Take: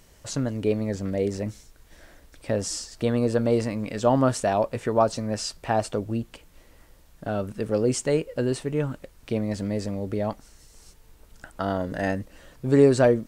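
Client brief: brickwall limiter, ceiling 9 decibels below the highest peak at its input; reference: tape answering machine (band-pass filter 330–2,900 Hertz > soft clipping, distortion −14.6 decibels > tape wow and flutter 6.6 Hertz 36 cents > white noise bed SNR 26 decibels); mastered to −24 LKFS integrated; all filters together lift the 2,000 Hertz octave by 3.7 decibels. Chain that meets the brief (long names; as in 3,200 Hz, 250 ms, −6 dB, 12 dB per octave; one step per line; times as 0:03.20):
parametric band 2,000 Hz +5.5 dB
brickwall limiter −15.5 dBFS
band-pass filter 330–2,900 Hz
soft clipping −22 dBFS
tape wow and flutter 6.6 Hz 36 cents
white noise bed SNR 26 dB
level +9 dB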